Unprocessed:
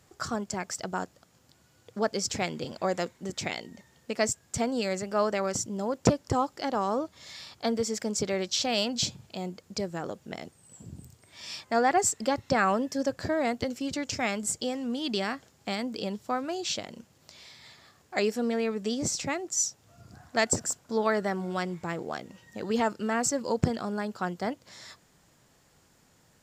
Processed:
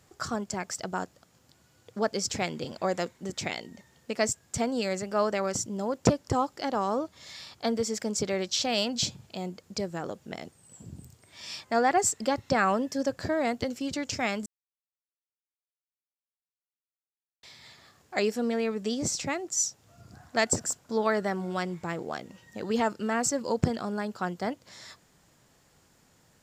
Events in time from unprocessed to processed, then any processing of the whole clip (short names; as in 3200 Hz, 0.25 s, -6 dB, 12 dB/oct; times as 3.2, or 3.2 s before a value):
14.46–17.43 mute